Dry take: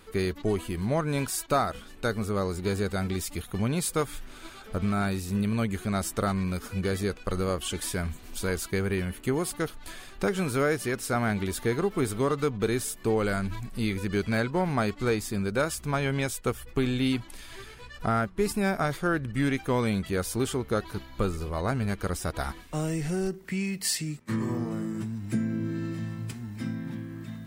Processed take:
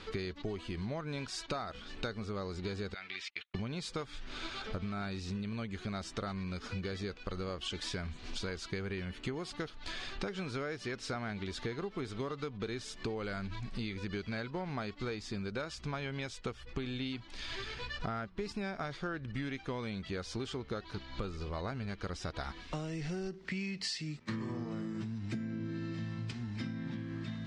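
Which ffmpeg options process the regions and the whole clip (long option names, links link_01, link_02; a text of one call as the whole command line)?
ffmpeg -i in.wav -filter_complex "[0:a]asettb=1/sr,asplit=3[link_01][link_02][link_03];[link_01]atrim=end=2.944[link_04];[link_02]atrim=start=2.94:end=3.55,asetpts=PTS-STARTPTS,afade=type=in:duration=0.004:curve=qsin,afade=type=out:start_time=0.606:duration=0.004:curve=qsin,agate=range=-40dB:threshold=-36dB:ratio=16:release=100:detection=peak,bandpass=frequency=2300:width_type=q:width=2.1[link_05];[link_03]atrim=start=3.546[link_06];[link_04][link_05]acrossfade=duration=0.004:curve1=hsin:curve2=qsin[link_07];[link_07][link_06]acrossfade=duration=0.004:curve1=qsin:curve2=hsin,lowpass=frequency=4900:width=0.5412,lowpass=frequency=4900:width=1.3066,highshelf=frequency=3500:gain=11,acompressor=threshold=-40dB:ratio=6,volume=3.5dB" out.wav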